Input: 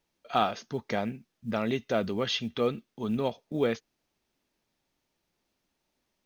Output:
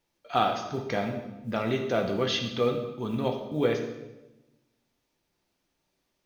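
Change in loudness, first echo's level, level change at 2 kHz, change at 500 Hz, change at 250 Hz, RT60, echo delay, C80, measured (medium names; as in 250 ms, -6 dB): +2.0 dB, no echo, +2.0 dB, +2.5 dB, +1.0 dB, 1.0 s, no echo, 9.0 dB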